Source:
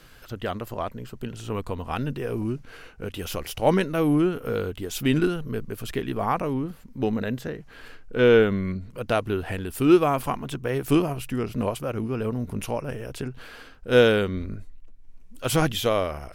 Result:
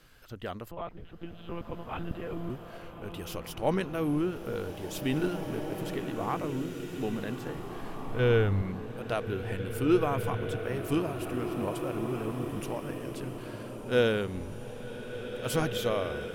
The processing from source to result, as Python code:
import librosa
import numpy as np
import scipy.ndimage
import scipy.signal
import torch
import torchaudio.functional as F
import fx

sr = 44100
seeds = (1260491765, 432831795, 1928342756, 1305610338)

y = fx.lpc_monotone(x, sr, seeds[0], pitch_hz=170.0, order=10, at=(0.71, 2.5))
y = fx.low_shelf_res(y, sr, hz=140.0, db=11.5, q=1.5, at=(7.56, 8.62))
y = fx.rev_bloom(y, sr, seeds[1], attack_ms=2030, drr_db=5.0)
y = y * 10.0 ** (-8.0 / 20.0)